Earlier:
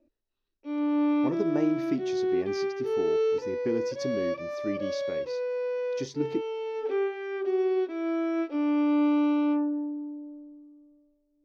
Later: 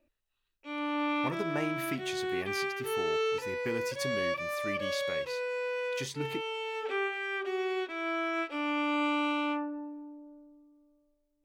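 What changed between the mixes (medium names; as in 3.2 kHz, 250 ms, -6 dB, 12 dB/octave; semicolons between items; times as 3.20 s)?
background: remove distance through air 68 m; master: remove FFT filter 140 Hz 0 dB, 310 Hz +10 dB, 1.2 kHz -5 dB, 2.9 kHz -9 dB, 5.8 kHz +1 dB, 8.4 kHz -23 dB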